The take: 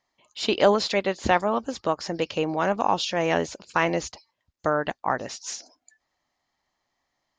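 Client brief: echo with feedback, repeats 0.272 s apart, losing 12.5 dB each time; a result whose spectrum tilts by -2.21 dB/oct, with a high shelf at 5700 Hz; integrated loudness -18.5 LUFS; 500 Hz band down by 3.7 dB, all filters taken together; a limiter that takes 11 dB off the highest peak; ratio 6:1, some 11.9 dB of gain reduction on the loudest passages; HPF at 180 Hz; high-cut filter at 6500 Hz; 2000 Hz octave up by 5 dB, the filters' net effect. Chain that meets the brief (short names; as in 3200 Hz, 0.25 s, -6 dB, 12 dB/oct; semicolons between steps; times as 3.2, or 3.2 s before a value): HPF 180 Hz; LPF 6500 Hz; bell 500 Hz -5 dB; bell 2000 Hz +6 dB; high shelf 5700 Hz +5 dB; compressor 6:1, threshold -28 dBFS; limiter -22 dBFS; feedback echo 0.272 s, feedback 24%, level -12.5 dB; gain +16.5 dB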